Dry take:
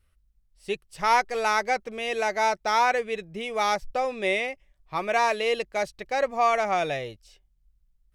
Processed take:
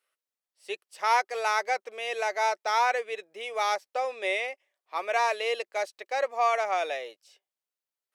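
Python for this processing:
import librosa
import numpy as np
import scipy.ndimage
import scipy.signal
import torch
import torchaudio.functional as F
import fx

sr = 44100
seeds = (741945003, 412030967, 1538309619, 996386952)

y = scipy.signal.sosfilt(scipy.signal.butter(4, 430.0, 'highpass', fs=sr, output='sos'), x)
y = y * 10.0 ** (-2.5 / 20.0)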